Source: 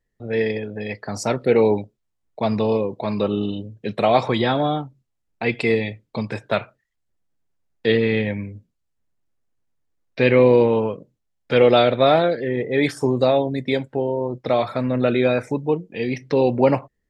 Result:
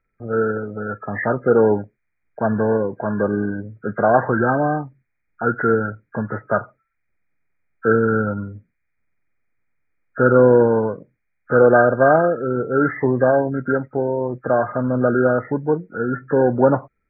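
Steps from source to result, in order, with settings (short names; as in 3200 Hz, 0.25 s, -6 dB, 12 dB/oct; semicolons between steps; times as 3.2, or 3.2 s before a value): nonlinear frequency compression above 1200 Hz 4:1; gain +1.5 dB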